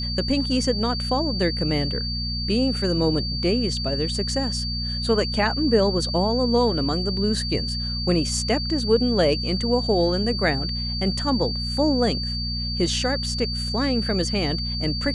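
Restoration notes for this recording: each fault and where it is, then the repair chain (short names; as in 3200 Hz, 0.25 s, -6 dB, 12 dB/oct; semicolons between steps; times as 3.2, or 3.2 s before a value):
hum 60 Hz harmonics 4 -29 dBFS
tone 4600 Hz -28 dBFS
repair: de-hum 60 Hz, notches 4; notch 4600 Hz, Q 30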